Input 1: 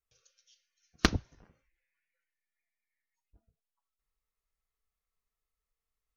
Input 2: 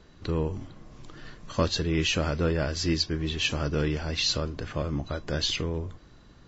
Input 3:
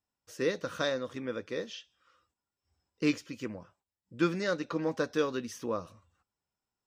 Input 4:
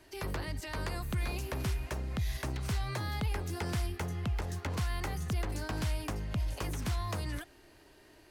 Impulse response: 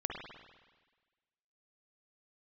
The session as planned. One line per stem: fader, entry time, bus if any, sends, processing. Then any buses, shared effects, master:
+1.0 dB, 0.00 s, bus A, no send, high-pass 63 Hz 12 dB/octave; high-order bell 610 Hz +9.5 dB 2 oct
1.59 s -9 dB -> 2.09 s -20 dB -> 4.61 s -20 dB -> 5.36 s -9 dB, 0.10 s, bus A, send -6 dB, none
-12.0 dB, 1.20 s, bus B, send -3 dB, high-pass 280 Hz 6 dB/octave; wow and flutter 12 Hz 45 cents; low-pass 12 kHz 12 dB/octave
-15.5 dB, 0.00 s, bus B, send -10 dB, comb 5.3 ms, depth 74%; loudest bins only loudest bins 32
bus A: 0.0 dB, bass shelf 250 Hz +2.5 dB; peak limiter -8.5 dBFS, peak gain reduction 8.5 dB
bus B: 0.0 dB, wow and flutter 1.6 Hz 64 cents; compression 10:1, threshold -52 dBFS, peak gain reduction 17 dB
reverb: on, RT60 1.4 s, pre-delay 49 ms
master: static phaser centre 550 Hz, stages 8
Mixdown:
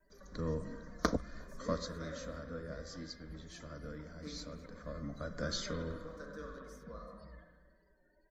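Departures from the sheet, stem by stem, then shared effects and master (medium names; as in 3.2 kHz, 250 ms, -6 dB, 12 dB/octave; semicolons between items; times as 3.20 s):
stem 3: missing low-pass 12 kHz 12 dB/octave; stem 4 -15.5 dB -> -9.5 dB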